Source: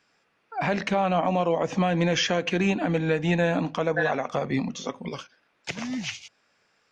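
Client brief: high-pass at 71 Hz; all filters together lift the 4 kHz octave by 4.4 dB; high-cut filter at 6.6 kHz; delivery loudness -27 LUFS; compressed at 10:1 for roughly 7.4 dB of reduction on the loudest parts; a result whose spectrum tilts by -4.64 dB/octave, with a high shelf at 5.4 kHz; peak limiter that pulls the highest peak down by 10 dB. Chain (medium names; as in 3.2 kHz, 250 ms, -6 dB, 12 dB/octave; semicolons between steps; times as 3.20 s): high-pass 71 Hz; low-pass 6.6 kHz; peaking EQ 4 kHz +3.5 dB; treble shelf 5.4 kHz +8 dB; compression 10:1, threshold -26 dBFS; trim +6.5 dB; peak limiter -17 dBFS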